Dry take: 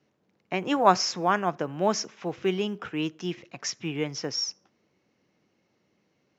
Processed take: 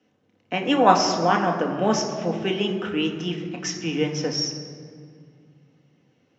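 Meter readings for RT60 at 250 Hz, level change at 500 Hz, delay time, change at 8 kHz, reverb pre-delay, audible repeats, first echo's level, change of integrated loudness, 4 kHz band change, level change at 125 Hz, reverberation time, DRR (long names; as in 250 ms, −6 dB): 3.1 s, +4.5 dB, no echo audible, can't be measured, 3 ms, no echo audible, no echo audible, +4.5 dB, +4.0 dB, +6.0 dB, 2.2 s, 2.0 dB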